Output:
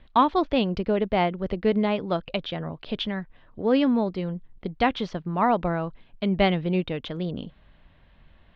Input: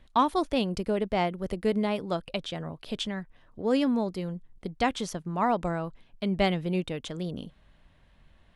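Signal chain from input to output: inverse Chebyshev low-pass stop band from 11 kHz, stop band 60 dB; trim +4 dB

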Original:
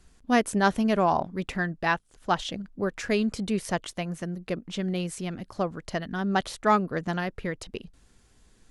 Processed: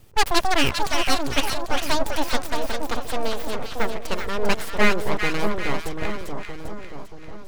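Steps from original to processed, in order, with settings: gliding tape speed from 179% -> 54%; full-wave rectifier; two-band feedback delay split 1.2 kHz, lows 630 ms, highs 397 ms, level -5 dB; trim +6 dB

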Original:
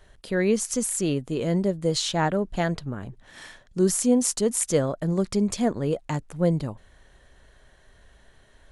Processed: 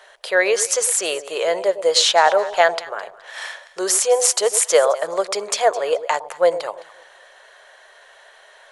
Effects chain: inverse Chebyshev high-pass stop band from 270 Hz, stop band 40 dB; treble shelf 6.2 kHz -7.5 dB; echo whose repeats swap between lows and highs 106 ms, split 870 Hz, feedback 50%, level -12 dB; loudness maximiser +15 dB; trim -1 dB

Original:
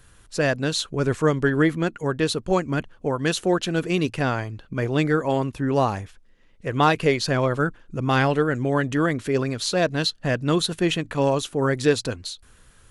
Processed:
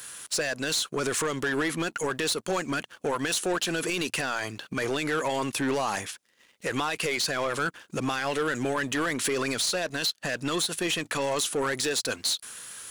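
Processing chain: high-pass 140 Hz 12 dB/octave; tilt EQ +3.5 dB/octave; compression 5:1, threshold -25 dBFS, peak gain reduction 11.5 dB; peak limiter -21.5 dBFS, peak gain reduction 10 dB; waveshaping leveller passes 2; trim +1 dB

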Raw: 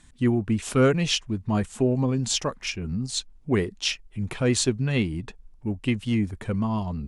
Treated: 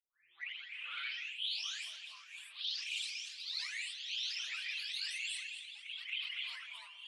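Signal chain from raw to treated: delay that grows with frequency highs late, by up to 733 ms; inverse Chebyshev high-pass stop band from 460 Hz, stop band 80 dB; distance through air 460 m; on a send: multi-head delay 79 ms, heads first and third, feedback 42%, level -15 dB; on the sum: touch-sensitive flanger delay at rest 6.4 ms, full sweep at -41.5 dBFS; reverse; compression 16:1, threshold -54 dBFS, peak gain reduction 19 dB; reverse; ever faster or slower copies 110 ms, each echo +1 st, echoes 3, each echo -6 dB; decay stretcher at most 45 dB/s; trim +16.5 dB

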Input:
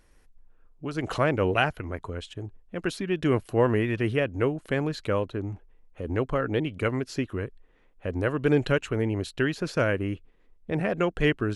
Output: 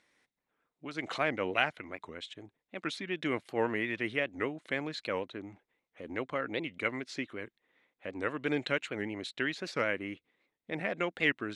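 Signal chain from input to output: cabinet simulation 240–9200 Hz, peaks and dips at 420 Hz -5 dB, 2.1 kHz +10 dB, 3.7 kHz +9 dB; warped record 78 rpm, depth 160 cents; trim -6.5 dB

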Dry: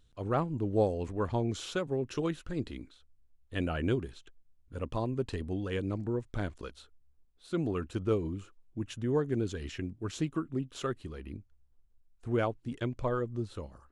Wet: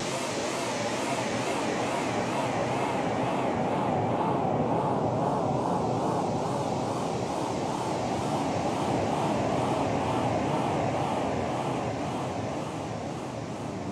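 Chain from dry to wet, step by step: noise-vocoded speech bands 4; Paulstretch 18×, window 0.50 s, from 1.70 s; wow and flutter 140 cents; trim +5 dB

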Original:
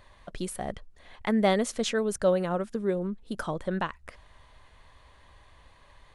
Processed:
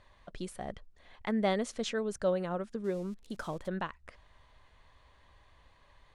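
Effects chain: 2.84–3.68 s: zero-crossing glitches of -35.5 dBFS; low-pass 7.8 kHz 12 dB/octave; trim -6 dB

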